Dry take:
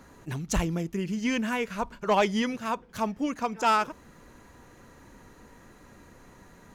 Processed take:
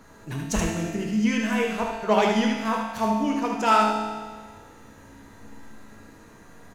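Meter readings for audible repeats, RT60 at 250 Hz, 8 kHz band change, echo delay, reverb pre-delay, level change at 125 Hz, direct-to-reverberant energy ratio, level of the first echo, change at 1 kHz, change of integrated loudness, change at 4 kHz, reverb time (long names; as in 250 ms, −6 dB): 1, 1.6 s, +3.5 dB, 76 ms, 4 ms, +2.0 dB, −2.0 dB, −4.5 dB, +4.5 dB, +4.5 dB, +3.5 dB, 1.6 s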